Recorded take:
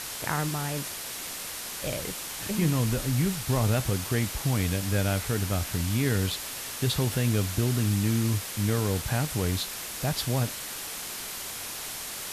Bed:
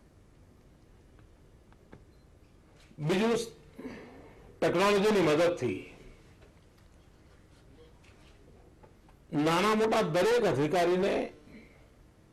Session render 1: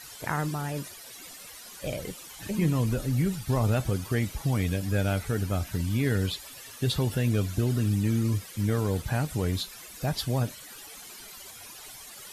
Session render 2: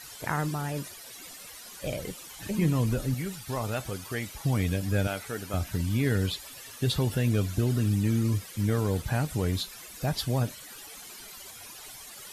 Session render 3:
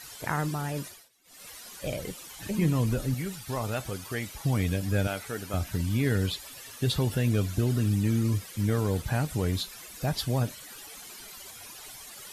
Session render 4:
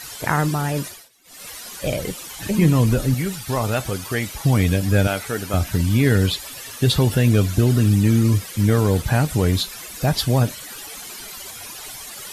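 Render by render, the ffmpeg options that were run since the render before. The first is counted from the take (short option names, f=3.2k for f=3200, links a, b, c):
-af "afftdn=nr=14:nf=-37"
-filter_complex "[0:a]asettb=1/sr,asplit=3[a][b][c];[a]atrim=end=3.144[d];[b]atrim=start=3.14:end=4.45,asetpts=PTS-STARTPTS,afade=t=in:d=0.004:c=qsin,afade=t=out:st=1.306:d=0.004:c=qsin,lowshelf=f=370:g=-10.5[e];[c]atrim=start=4.446[f];[d][e]acrossfade=d=0.004:c1=hsin:c2=qsin[g];[g][f]acrossfade=d=0.004:c1=qsin:c2=hsin,asettb=1/sr,asplit=3[h][i][j];[h]atrim=end=5.074[k];[i]atrim=start=5.07:end=5.54,asetpts=PTS-STARTPTS,afade=t=in:d=0.004:c=qsin,afade=t=out:st=0.466:d=0.004:c=qsin,highpass=f=500:p=1[l];[j]atrim=start=5.536[m];[k][l]acrossfade=d=0.004:c1=hsin:c2=qsin[n];[n][m]acrossfade=d=0.004:c1=qsin:c2=hsin"
-filter_complex "[0:a]asplit=3[a][b][c];[a]atrim=end=1.09,asetpts=PTS-STARTPTS,afade=t=out:st=0.85:d=0.24:silence=0.0707946[d];[b]atrim=start=1.09:end=1.24,asetpts=PTS-STARTPTS,volume=-23dB[e];[c]atrim=start=1.24,asetpts=PTS-STARTPTS,afade=t=in:d=0.24:silence=0.0707946[f];[d][e][f]concat=n=3:v=0:a=1"
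-af "volume=9.5dB"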